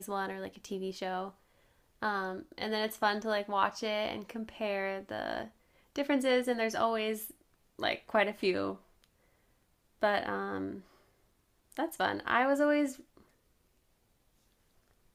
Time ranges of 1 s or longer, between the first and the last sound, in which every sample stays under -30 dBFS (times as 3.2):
8.71–10.03
10.63–11.79